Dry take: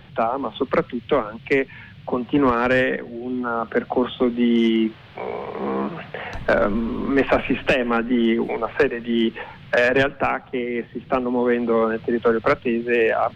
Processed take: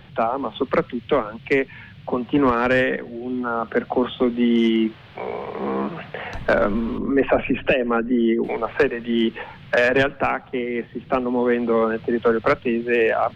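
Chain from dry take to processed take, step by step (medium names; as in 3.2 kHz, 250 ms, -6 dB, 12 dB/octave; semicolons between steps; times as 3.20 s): 6.98–8.44 s: resonances exaggerated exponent 1.5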